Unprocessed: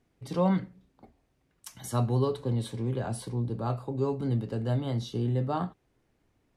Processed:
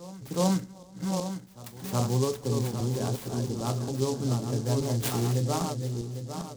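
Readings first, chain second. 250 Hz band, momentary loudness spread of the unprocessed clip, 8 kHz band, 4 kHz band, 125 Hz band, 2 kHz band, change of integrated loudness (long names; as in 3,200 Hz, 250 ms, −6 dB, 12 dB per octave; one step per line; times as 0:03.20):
+1.5 dB, 9 LU, +11.0 dB, +7.5 dB, +1.5 dB, +3.0 dB, +1.0 dB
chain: feedback delay that plays each chunk backwards 401 ms, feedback 58%, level −5 dB
gain on a spectral selection 0:05.03–0:05.32, 650–8,500 Hz +12 dB
backwards echo 371 ms −19 dB
short delay modulated by noise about 5,500 Hz, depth 0.081 ms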